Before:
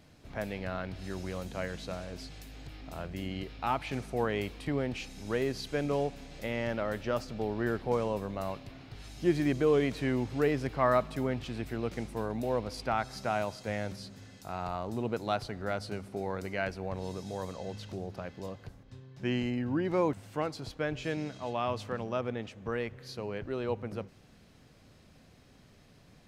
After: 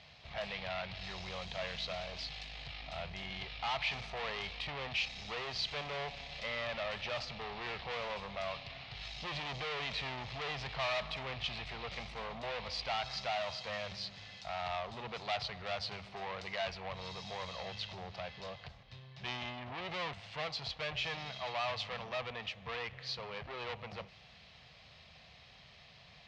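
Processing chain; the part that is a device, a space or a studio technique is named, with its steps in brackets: scooped metal amplifier (tube stage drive 38 dB, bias 0.45; speaker cabinet 84–4200 Hz, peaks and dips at 100 Hz -7 dB, 690 Hz +5 dB, 1500 Hz -8 dB; passive tone stack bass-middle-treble 10-0-10); gain +15 dB

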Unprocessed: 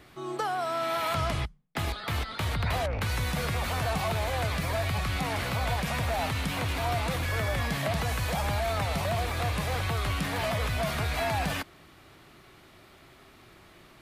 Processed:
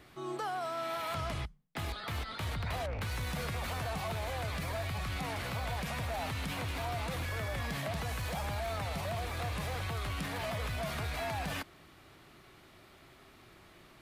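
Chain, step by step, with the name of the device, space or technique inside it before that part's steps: limiter into clipper (limiter -25 dBFS, peak gain reduction 5 dB; hard clip -27 dBFS, distortion -26 dB); gain -3.5 dB

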